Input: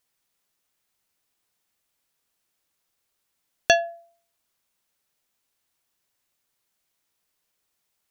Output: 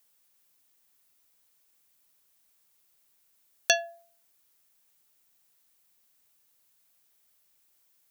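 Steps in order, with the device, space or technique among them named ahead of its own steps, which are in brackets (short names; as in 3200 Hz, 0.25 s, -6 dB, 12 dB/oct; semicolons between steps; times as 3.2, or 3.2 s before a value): turntable without a phono preamp (RIAA curve recording; white noise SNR 35 dB); gain -7.5 dB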